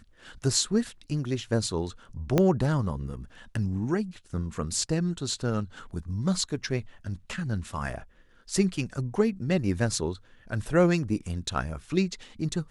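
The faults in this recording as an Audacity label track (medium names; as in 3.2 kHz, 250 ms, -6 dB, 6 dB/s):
2.380000	2.380000	pop -9 dBFS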